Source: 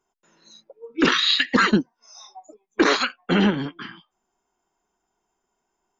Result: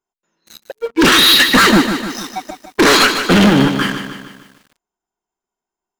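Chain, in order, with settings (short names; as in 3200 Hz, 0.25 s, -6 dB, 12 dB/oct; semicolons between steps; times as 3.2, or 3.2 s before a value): sample leveller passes 5; lo-fi delay 0.151 s, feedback 55%, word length 7-bit, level -8.5 dB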